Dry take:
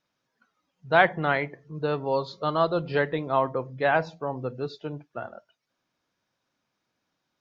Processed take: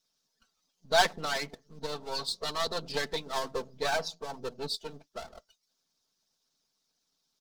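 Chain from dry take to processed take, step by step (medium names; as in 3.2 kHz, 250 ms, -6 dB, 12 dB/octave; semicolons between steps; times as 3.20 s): partial rectifier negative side -12 dB; resonant high shelf 3.2 kHz +12 dB, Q 1.5; comb 4.5 ms, depth 93%; harmonic-percussive split harmonic -13 dB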